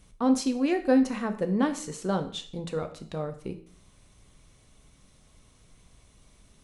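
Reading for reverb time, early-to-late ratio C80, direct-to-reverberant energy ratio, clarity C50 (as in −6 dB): 0.50 s, 16.0 dB, 7.0 dB, 12.0 dB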